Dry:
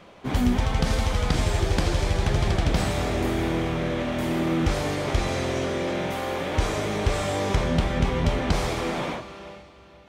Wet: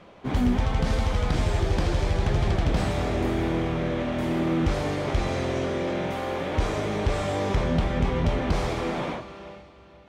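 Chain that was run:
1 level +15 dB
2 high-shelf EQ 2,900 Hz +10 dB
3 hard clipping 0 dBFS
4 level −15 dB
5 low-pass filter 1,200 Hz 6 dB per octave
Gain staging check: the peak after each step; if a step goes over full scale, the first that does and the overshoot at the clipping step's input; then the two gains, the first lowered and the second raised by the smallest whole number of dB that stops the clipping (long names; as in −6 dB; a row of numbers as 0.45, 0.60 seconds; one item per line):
+6.0, +10.0, 0.0, −15.0, −15.0 dBFS
step 1, 10.0 dB
step 1 +5 dB, step 4 −5 dB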